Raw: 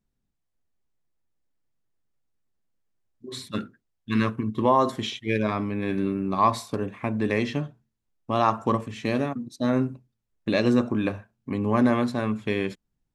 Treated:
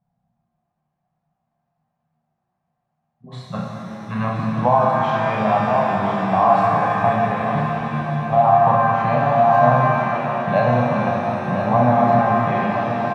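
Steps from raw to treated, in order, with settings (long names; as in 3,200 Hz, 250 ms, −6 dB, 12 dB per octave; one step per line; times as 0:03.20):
in parallel at −1.5 dB: downward compressor, threshold −32 dBFS, peak gain reduction 16 dB
on the sum: pair of resonant band-passes 340 Hz, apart 2.2 octaves
single-tap delay 1,020 ms −8.5 dB
0:07.24–0:08.67: output level in coarse steps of 11 dB
parametric band 220 Hz −4 dB 2 octaves
double-tracking delay 33 ms −4.5 dB
boost into a limiter +22 dB
reverb with rising layers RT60 3.9 s, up +7 semitones, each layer −8 dB, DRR −1.5 dB
level −5.5 dB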